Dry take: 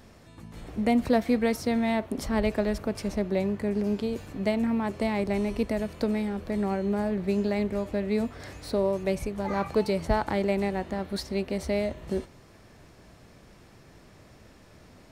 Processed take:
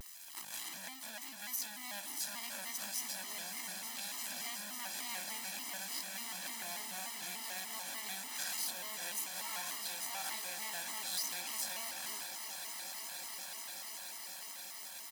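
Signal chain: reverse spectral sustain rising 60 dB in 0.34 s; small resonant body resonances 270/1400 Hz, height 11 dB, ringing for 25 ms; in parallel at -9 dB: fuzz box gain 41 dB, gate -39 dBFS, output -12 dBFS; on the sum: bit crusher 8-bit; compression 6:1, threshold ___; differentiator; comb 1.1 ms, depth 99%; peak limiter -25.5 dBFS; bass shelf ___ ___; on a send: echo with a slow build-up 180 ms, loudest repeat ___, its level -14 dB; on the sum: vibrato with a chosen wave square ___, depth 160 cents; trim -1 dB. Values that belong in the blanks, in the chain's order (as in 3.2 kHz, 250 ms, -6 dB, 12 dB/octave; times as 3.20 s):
-24 dBFS, 320 Hz, -12 dB, 8, 3.4 Hz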